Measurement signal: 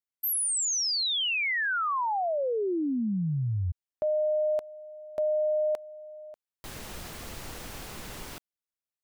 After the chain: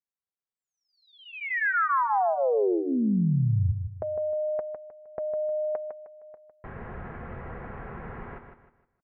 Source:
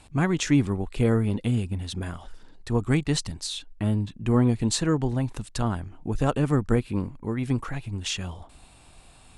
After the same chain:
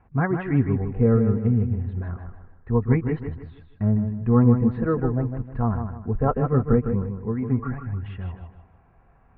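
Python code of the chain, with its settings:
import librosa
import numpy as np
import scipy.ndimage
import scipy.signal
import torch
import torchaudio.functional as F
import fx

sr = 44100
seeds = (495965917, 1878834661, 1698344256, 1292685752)

y = scipy.signal.sosfilt(scipy.signal.butter(6, 1900.0, 'lowpass', fs=sr, output='sos'), x)
y = fx.noise_reduce_blind(y, sr, reduce_db=7)
y = fx.notch_comb(y, sr, f0_hz=300.0)
y = fx.echo_feedback(y, sr, ms=155, feedback_pct=34, wet_db=-7.5)
y = y * librosa.db_to_amplitude(4.5)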